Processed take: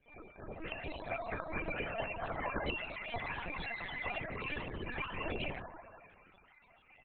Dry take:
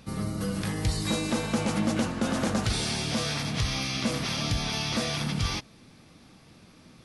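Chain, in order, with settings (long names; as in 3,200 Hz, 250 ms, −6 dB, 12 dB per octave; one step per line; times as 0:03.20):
gate on every frequency bin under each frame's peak −15 dB weak
high-pass filter 50 Hz 12 dB per octave
comb filter 5.5 ms, depth 40%
automatic gain control gain up to 7.5 dB
tuned comb filter 340 Hz, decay 0.2 s, harmonics all, mix 100%
on a send: delay with a band-pass on its return 75 ms, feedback 80%, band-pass 760 Hz, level −5.5 dB
on the sum: random phases in short frames
high-frequency loss of the air 150 metres
spectral peaks only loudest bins 32
linear-prediction vocoder at 8 kHz pitch kept
level +6.5 dB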